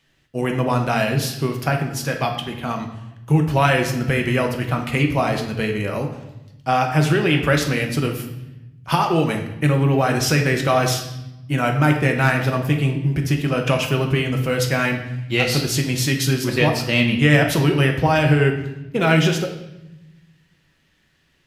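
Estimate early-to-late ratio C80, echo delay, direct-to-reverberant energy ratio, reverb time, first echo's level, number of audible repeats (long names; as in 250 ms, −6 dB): 10.0 dB, no echo audible, 2.5 dB, 0.90 s, no echo audible, no echo audible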